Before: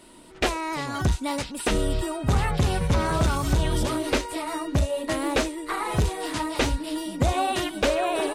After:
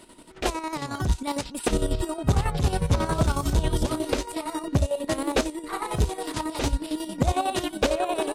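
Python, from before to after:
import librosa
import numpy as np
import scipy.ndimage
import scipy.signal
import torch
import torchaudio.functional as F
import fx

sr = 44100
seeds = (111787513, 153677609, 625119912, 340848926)

y = fx.chopper(x, sr, hz=11.0, depth_pct=60, duty_pct=50)
y = fx.dynamic_eq(y, sr, hz=2000.0, q=1.0, threshold_db=-44.0, ratio=4.0, max_db=-5)
y = F.gain(torch.from_numpy(y), 2.0).numpy()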